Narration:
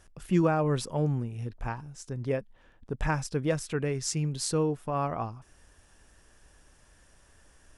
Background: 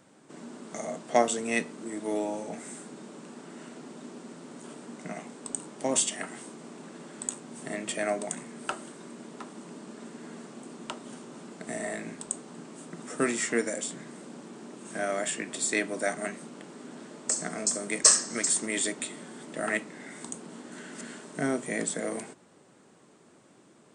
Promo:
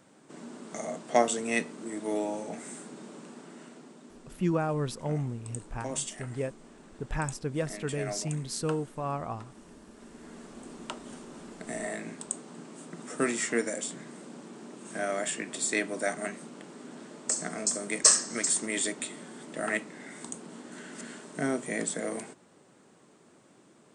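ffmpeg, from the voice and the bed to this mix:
ffmpeg -i stem1.wav -i stem2.wav -filter_complex "[0:a]adelay=4100,volume=-3.5dB[link_01];[1:a]volume=6.5dB,afade=type=out:start_time=3.15:duration=0.88:silence=0.421697,afade=type=in:start_time=9.95:duration=0.73:silence=0.446684[link_02];[link_01][link_02]amix=inputs=2:normalize=0" out.wav

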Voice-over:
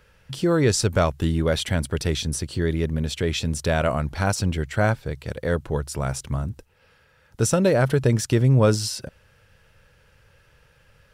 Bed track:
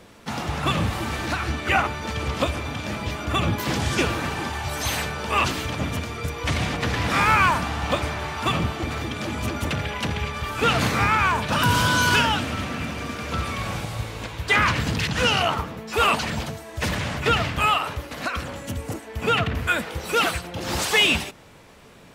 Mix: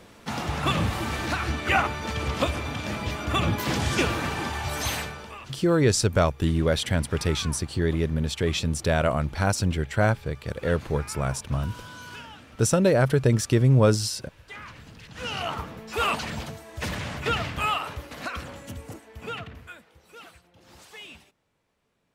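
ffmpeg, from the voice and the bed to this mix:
ffmpeg -i stem1.wav -i stem2.wav -filter_complex "[0:a]adelay=5200,volume=-1dB[link_01];[1:a]volume=15.5dB,afade=type=out:start_time=4.81:duration=0.57:silence=0.0891251,afade=type=in:start_time=15.07:duration=0.57:silence=0.141254,afade=type=out:start_time=18.32:duration=1.49:silence=0.1[link_02];[link_01][link_02]amix=inputs=2:normalize=0" out.wav

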